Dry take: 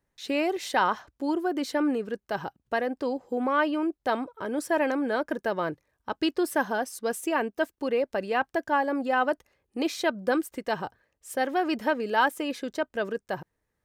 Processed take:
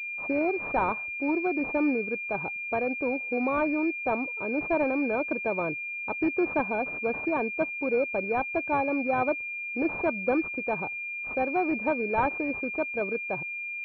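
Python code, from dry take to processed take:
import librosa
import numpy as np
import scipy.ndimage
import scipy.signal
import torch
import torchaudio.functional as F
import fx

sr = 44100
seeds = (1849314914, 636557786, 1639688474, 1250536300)

y = fx.pwm(x, sr, carrier_hz=2400.0)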